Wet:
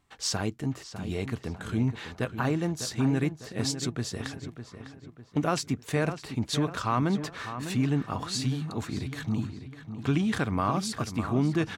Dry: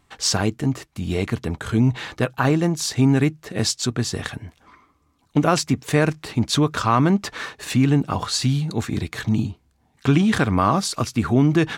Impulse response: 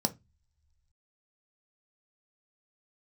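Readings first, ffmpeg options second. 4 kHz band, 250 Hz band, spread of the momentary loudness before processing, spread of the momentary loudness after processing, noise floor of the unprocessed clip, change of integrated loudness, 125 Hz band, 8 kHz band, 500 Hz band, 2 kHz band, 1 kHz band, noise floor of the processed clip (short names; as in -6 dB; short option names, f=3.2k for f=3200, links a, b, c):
-9.0 dB, -8.5 dB, 9 LU, 10 LU, -64 dBFS, -8.5 dB, -8.5 dB, -9.0 dB, -8.5 dB, -8.5 dB, -8.5 dB, -52 dBFS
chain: -filter_complex "[0:a]asplit=2[a][b];[b]adelay=602,lowpass=f=3k:p=1,volume=-10dB,asplit=2[c][d];[d]adelay=602,lowpass=f=3k:p=1,volume=0.45,asplit=2[e][f];[f]adelay=602,lowpass=f=3k:p=1,volume=0.45,asplit=2[g][h];[h]adelay=602,lowpass=f=3k:p=1,volume=0.45,asplit=2[i][j];[j]adelay=602,lowpass=f=3k:p=1,volume=0.45[k];[a][c][e][g][i][k]amix=inputs=6:normalize=0,volume=-9dB"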